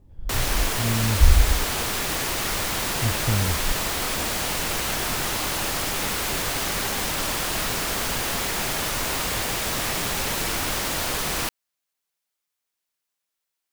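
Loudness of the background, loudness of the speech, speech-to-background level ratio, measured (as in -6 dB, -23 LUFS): -24.5 LUFS, -25.5 LUFS, -1.0 dB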